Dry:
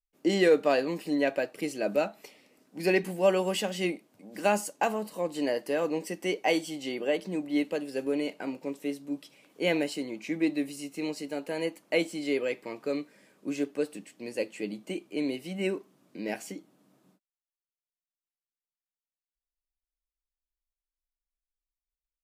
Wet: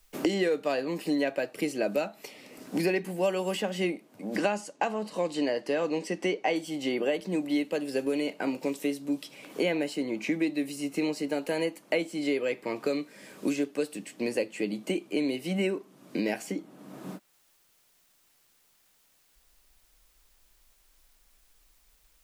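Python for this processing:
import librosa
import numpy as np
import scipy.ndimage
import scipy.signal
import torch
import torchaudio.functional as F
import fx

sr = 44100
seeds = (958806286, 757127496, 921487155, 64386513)

y = fx.lowpass(x, sr, hz=6200.0, slope=12, at=(4.36, 6.56))
y = fx.band_squash(y, sr, depth_pct=100)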